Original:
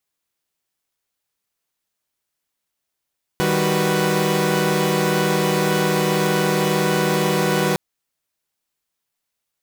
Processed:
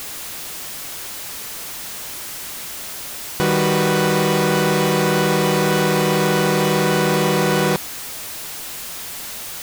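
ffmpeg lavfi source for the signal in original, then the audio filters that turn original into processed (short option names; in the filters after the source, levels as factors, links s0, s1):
-f lavfi -i "aevalsrc='0.1*((2*mod(155.56*t,1)-1)+(2*mod(196*t,1)-1)+(2*mod(369.99*t,1)-1)+(2*mod(493.88*t,1)-1))':d=4.36:s=44100"
-af "aeval=exprs='val(0)+0.5*0.0596*sgn(val(0))':c=same"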